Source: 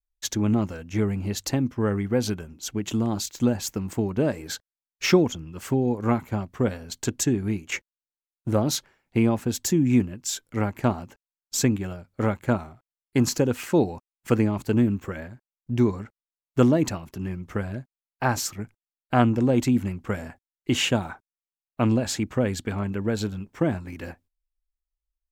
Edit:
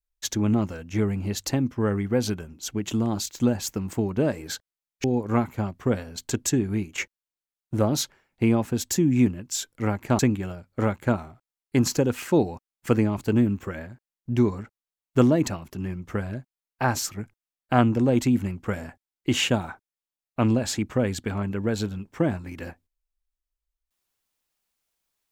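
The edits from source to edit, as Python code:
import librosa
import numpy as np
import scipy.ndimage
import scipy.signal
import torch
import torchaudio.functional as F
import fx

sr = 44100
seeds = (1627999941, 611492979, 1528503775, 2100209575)

y = fx.edit(x, sr, fx.cut(start_s=5.04, length_s=0.74),
    fx.cut(start_s=10.93, length_s=0.67), tone=tone)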